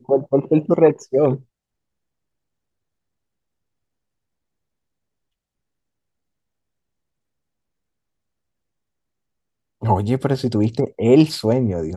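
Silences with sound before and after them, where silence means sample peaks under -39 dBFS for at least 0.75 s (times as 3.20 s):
1.41–9.82 s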